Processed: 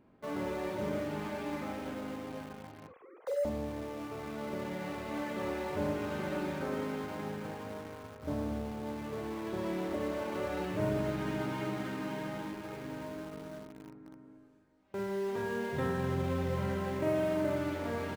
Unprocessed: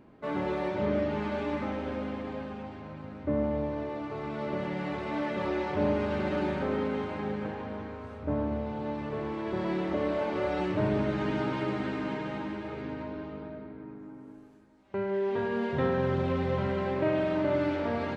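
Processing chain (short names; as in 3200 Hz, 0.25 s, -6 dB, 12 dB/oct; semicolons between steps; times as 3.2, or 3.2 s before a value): 2.87–3.45 sine-wave speech; early reflections 45 ms -7 dB, 56 ms -14 dB; in parallel at -8 dB: bit-crush 6-bit; on the sum: gain -8.5 dB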